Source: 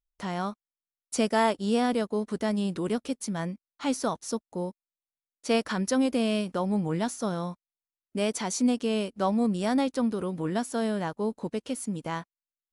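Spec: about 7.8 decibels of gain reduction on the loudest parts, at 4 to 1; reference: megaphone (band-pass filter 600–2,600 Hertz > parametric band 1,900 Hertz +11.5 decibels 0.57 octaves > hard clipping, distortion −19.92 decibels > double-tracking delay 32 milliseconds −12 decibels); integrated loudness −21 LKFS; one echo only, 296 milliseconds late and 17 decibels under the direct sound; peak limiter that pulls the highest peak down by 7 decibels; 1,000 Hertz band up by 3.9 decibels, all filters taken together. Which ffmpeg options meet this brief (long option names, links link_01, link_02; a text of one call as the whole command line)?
ffmpeg -i in.wav -filter_complex "[0:a]equalizer=frequency=1000:width_type=o:gain=5,acompressor=threshold=-27dB:ratio=4,alimiter=limit=-23dB:level=0:latency=1,highpass=600,lowpass=2600,equalizer=frequency=1900:width_type=o:width=0.57:gain=11.5,aecho=1:1:296:0.141,asoftclip=type=hard:threshold=-25.5dB,asplit=2[link_01][link_02];[link_02]adelay=32,volume=-12dB[link_03];[link_01][link_03]amix=inputs=2:normalize=0,volume=17dB" out.wav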